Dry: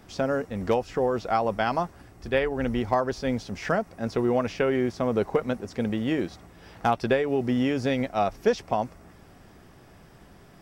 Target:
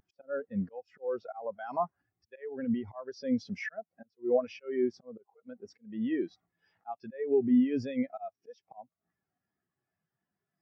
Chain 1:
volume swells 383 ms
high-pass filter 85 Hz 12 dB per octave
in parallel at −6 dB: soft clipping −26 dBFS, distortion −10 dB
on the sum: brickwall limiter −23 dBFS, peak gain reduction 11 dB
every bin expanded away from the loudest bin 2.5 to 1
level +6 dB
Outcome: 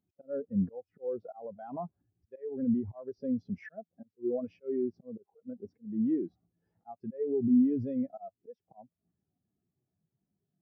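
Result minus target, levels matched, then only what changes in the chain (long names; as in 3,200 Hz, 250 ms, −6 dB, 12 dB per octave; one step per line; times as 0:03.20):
1,000 Hz band −8.0 dB
add after high-pass filter: tilt shelving filter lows −7 dB, about 910 Hz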